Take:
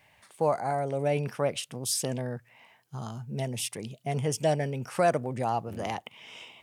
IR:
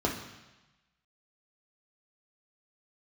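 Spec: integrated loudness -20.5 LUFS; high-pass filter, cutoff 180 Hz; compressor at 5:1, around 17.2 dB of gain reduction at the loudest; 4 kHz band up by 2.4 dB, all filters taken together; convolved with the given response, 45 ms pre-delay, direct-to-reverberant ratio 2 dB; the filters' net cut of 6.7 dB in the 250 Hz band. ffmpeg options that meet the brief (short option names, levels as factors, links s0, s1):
-filter_complex "[0:a]highpass=180,equalizer=f=250:t=o:g=-7,equalizer=f=4000:t=o:g=3.5,acompressor=threshold=0.00891:ratio=5,asplit=2[s0][s1];[1:a]atrim=start_sample=2205,adelay=45[s2];[s1][s2]afir=irnorm=-1:irlink=0,volume=0.251[s3];[s0][s3]amix=inputs=2:normalize=0,volume=10.6"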